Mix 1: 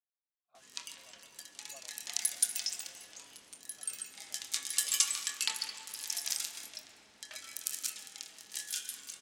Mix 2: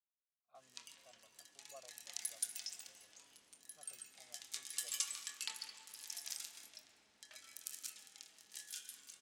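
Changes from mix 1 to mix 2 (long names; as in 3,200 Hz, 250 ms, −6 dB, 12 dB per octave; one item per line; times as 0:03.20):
background −10.5 dB
reverb: on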